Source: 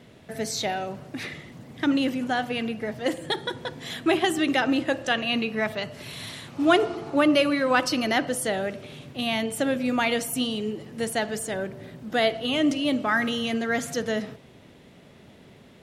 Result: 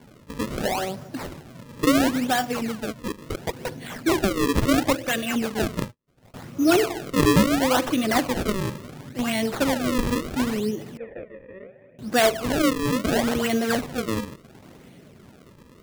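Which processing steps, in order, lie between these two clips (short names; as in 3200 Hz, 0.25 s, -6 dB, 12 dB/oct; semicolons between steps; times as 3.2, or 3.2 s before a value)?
bin magnitudes rounded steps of 15 dB; 2.92–3.61 level quantiser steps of 15 dB; 5.54–6.34 gate -34 dBFS, range -48 dB; rotary speaker horn 0.8 Hz; decimation with a swept rate 34×, swing 160% 0.72 Hz; 10.97–11.99 vocal tract filter e; gain +4.5 dB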